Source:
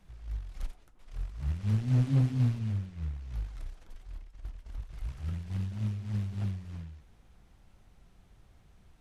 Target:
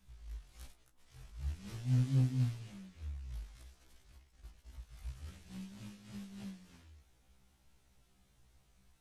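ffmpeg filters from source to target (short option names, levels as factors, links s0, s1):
-af "highshelf=f=3100:g=11.5,afftfilt=real='re*1.73*eq(mod(b,3),0)':imag='im*1.73*eq(mod(b,3),0)':win_size=2048:overlap=0.75,volume=0.447"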